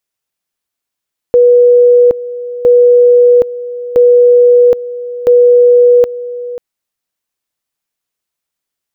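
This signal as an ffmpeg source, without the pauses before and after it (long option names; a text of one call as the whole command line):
ffmpeg -f lavfi -i "aevalsrc='pow(10,(-2.5-16*gte(mod(t,1.31),0.77))/20)*sin(2*PI*487*t)':duration=5.24:sample_rate=44100" out.wav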